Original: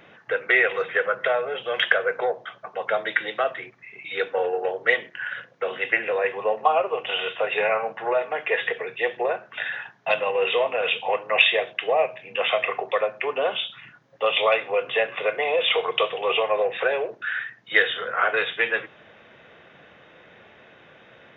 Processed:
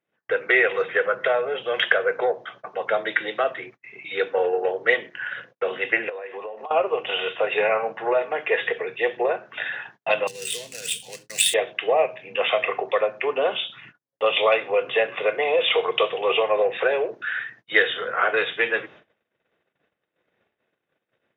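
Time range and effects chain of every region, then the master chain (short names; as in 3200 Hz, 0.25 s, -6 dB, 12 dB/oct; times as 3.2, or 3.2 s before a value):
6.09–6.71 HPF 260 Hz + compressor 16:1, threshold -32 dBFS
10.27–11.54 median filter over 9 samples + EQ curve 160 Hz 0 dB, 720 Hz -25 dB, 1200 Hz -26 dB, 1600 Hz -9 dB, 2600 Hz -9 dB, 4100 Hz +12 dB
whole clip: gate -46 dBFS, range -36 dB; bell 340 Hz +4.5 dB 1.1 oct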